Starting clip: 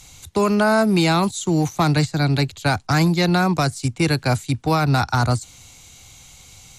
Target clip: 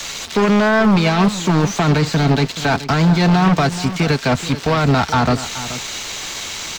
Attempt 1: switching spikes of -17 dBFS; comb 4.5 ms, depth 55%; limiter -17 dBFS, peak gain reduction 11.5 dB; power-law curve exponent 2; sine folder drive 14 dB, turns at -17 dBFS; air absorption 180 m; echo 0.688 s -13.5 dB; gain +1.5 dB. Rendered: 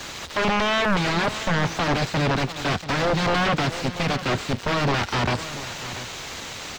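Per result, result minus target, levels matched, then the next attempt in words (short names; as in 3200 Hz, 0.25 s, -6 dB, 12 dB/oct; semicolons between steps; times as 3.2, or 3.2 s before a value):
echo 0.26 s late; sine folder: distortion +14 dB
switching spikes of -17 dBFS; comb 4.5 ms, depth 55%; limiter -17 dBFS, peak gain reduction 11.5 dB; power-law curve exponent 2; sine folder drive 14 dB, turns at -17 dBFS; air absorption 180 m; echo 0.428 s -13.5 dB; gain +1.5 dB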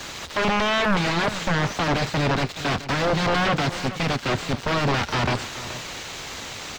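sine folder: distortion +14 dB
switching spikes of -17 dBFS; comb 4.5 ms, depth 55%; limiter -17 dBFS, peak gain reduction 11.5 dB; power-law curve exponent 2; sine folder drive 14 dB, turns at -9 dBFS; air absorption 180 m; echo 0.428 s -13.5 dB; gain +1.5 dB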